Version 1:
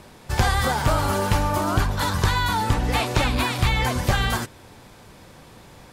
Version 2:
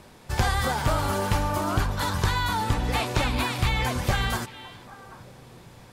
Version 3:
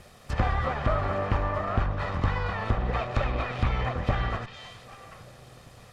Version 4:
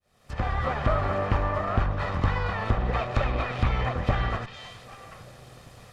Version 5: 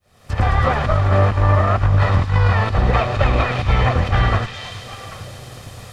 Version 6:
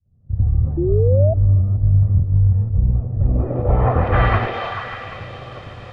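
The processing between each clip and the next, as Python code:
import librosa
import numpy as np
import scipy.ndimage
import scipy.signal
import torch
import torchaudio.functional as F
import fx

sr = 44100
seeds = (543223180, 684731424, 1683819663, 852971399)

y1 = fx.echo_stepped(x, sr, ms=394, hz=2800.0, octaves=-1.4, feedback_pct=70, wet_db=-11.5)
y1 = y1 * librosa.db_to_amplitude(-3.5)
y2 = fx.lower_of_two(y1, sr, delay_ms=1.6)
y2 = fx.env_lowpass_down(y2, sr, base_hz=1900.0, full_db=-25.0)
y3 = fx.fade_in_head(y2, sr, length_s=0.72)
y3 = y3 * librosa.db_to_amplitude(1.5)
y4 = fx.peak_eq(y3, sr, hz=96.0, db=10.5, octaves=0.31)
y4 = fx.over_compress(y4, sr, threshold_db=-22.0, ratio=-0.5)
y4 = fx.echo_wet_highpass(y4, sr, ms=109, feedback_pct=83, hz=4500.0, wet_db=-3.5)
y4 = y4 * librosa.db_to_amplitude(8.5)
y5 = fx.echo_stepped(y4, sr, ms=147, hz=390.0, octaves=0.7, feedback_pct=70, wet_db=0)
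y5 = fx.filter_sweep_lowpass(y5, sr, from_hz=140.0, to_hz=2500.0, start_s=3.12, end_s=4.28, q=1.0)
y5 = fx.spec_paint(y5, sr, seeds[0], shape='rise', start_s=0.77, length_s=0.57, low_hz=330.0, high_hz=670.0, level_db=-20.0)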